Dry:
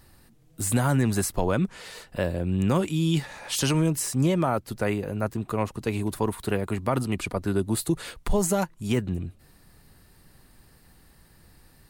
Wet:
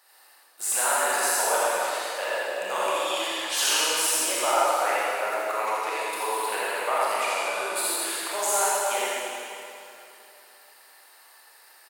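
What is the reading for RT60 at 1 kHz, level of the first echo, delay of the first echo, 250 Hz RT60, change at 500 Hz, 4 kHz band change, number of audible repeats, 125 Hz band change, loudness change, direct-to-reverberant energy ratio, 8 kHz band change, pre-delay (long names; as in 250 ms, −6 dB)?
2.9 s, −3.0 dB, 83 ms, 2.9 s, +0.5 dB, +8.0 dB, 1, below −40 dB, +2.0 dB, −9.5 dB, +7.5 dB, 24 ms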